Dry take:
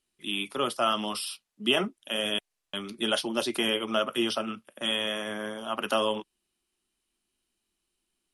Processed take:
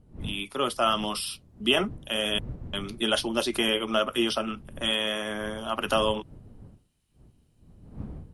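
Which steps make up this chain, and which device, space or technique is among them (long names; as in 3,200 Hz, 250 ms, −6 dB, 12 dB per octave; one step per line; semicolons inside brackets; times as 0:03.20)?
smartphone video outdoors (wind on the microphone 150 Hz −44 dBFS; automatic gain control gain up to 6 dB; level −4 dB; AAC 128 kbit/s 44,100 Hz)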